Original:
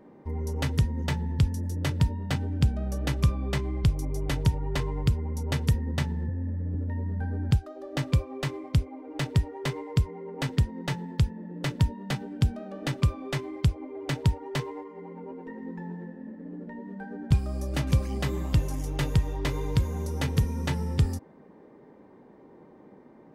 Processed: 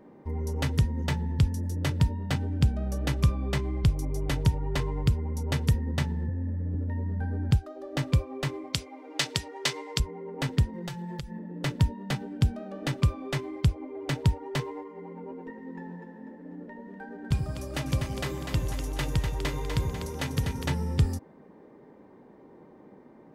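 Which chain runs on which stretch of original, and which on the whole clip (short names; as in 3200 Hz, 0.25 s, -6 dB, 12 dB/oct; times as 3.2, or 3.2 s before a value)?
8.73–10 HPF 430 Hz 6 dB/oct + bell 5500 Hz +12.5 dB 2.5 oct
10.73–11.39 high shelf 5600 Hz +7 dB + comb 5.8 ms, depth 94% + compressor 20:1, threshold -32 dBFS
15.5–20.66 low shelf 430 Hz -5 dB + split-band echo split 390 Hz, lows 83 ms, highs 0.247 s, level -6 dB
whole clip: dry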